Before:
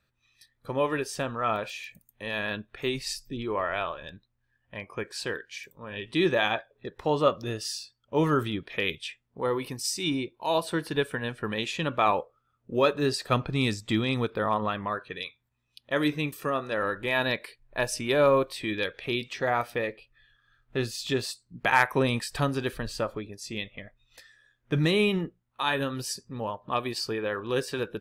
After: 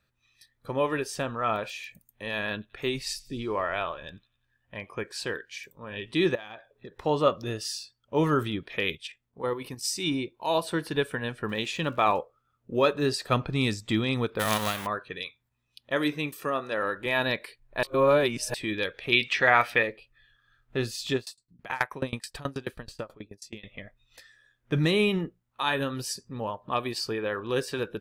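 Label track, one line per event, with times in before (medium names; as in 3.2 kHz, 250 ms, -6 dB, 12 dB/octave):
2.520000	4.920000	feedback echo behind a high-pass 89 ms, feedback 57%, high-pass 3.1 kHz, level -22 dB
6.350000	6.940000	compression 8:1, threshold -38 dBFS
8.960000	9.830000	level held to a coarse grid steps of 9 dB
11.480000	12.170000	crackle 160 per s -43 dBFS
14.390000	14.850000	formants flattened exponent 0.3
15.960000	17.060000	bass shelf 120 Hz -10.5 dB
17.830000	18.540000	reverse
19.120000	19.830000	peaking EQ 2.2 kHz +12.5 dB 2 oct
21.160000	23.650000	sawtooth tremolo in dB decaying 9.3 Hz, depth 26 dB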